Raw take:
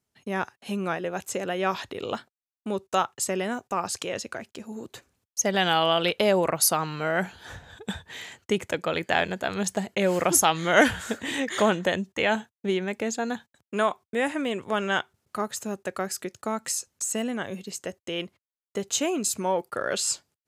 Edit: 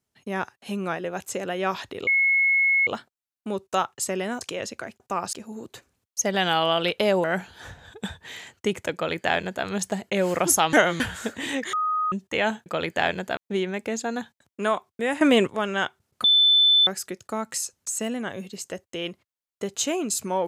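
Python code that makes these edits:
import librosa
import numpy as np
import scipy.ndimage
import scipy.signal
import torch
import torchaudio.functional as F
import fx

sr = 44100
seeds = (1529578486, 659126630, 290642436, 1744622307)

y = fx.edit(x, sr, fx.insert_tone(at_s=2.07, length_s=0.8, hz=2180.0, db=-17.0),
    fx.move(start_s=3.61, length_s=0.33, to_s=4.53),
    fx.cut(start_s=6.44, length_s=0.65),
    fx.duplicate(start_s=8.79, length_s=0.71, to_s=12.51),
    fx.reverse_span(start_s=10.58, length_s=0.27),
    fx.bleep(start_s=11.58, length_s=0.39, hz=1250.0, db=-21.5),
    fx.clip_gain(start_s=14.35, length_s=0.26, db=10.5),
    fx.bleep(start_s=15.38, length_s=0.63, hz=3520.0, db=-14.0), tone=tone)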